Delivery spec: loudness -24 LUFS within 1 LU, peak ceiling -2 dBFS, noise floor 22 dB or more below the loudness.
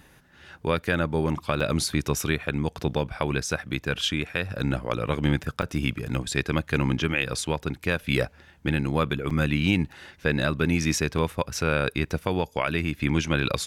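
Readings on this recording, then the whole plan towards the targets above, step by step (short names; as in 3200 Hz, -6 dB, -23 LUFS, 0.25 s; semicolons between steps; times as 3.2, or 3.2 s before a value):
dropouts 4; longest dropout 4.8 ms; loudness -26.5 LUFS; peak -9.0 dBFS; loudness target -24.0 LUFS
-> interpolate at 1.6/5.62/9.3/11.18, 4.8 ms; gain +2.5 dB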